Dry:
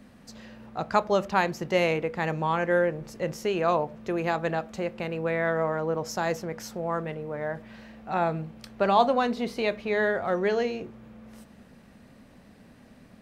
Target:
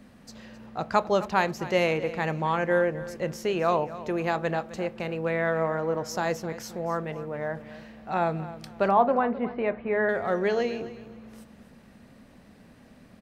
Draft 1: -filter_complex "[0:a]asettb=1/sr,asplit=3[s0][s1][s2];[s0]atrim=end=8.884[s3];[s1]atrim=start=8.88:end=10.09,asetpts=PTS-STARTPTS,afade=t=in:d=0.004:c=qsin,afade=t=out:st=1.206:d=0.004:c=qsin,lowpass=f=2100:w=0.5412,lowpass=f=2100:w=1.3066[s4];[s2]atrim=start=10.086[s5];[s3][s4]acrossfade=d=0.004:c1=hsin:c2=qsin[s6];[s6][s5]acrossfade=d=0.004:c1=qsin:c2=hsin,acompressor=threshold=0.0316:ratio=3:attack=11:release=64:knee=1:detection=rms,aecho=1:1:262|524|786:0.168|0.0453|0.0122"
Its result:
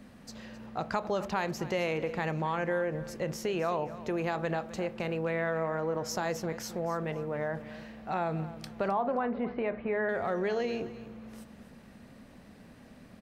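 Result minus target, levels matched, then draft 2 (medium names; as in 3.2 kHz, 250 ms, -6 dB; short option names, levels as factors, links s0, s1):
compression: peak gain reduction +11 dB
-filter_complex "[0:a]asettb=1/sr,asplit=3[s0][s1][s2];[s0]atrim=end=8.884[s3];[s1]atrim=start=8.88:end=10.09,asetpts=PTS-STARTPTS,afade=t=in:d=0.004:c=qsin,afade=t=out:st=1.206:d=0.004:c=qsin,lowpass=f=2100:w=0.5412,lowpass=f=2100:w=1.3066[s4];[s2]atrim=start=10.086[s5];[s3][s4]acrossfade=d=0.004:c1=hsin:c2=qsin[s6];[s6][s5]acrossfade=d=0.004:c1=qsin:c2=hsin,aecho=1:1:262|524|786:0.168|0.0453|0.0122"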